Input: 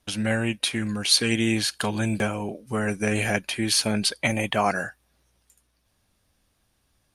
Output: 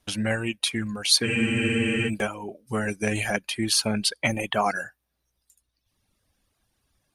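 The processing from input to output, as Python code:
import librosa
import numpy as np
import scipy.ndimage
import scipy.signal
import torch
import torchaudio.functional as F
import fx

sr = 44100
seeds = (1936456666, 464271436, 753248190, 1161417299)

y = fx.dereverb_blind(x, sr, rt60_s=1.3)
y = fx.spec_freeze(y, sr, seeds[0], at_s=1.28, hold_s=0.8)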